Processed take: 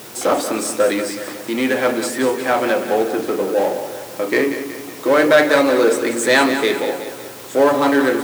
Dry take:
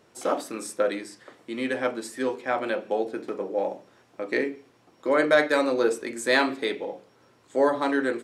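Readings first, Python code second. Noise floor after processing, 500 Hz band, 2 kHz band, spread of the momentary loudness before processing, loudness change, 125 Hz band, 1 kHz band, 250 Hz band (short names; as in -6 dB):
-34 dBFS, +9.0 dB, +8.5 dB, 15 LU, +8.5 dB, +11.5 dB, +9.0 dB, +10.0 dB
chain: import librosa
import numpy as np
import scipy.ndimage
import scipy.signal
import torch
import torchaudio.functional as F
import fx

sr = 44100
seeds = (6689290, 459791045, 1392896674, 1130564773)

p1 = fx.power_curve(x, sr, exponent=0.7)
p2 = fx.echo_feedback(p1, sr, ms=185, feedback_pct=50, wet_db=-10)
p3 = fx.quant_dither(p2, sr, seeds[0], bits=6, dither='triangular')
p4 = p2 + F.gain(torch.from_numpy(p3), -3.0).numpy()
y = scipy.signal.sosfilt(scipy.signal.butter(2, 78.0, 'highpass', fs=sr, output='sos'), p4)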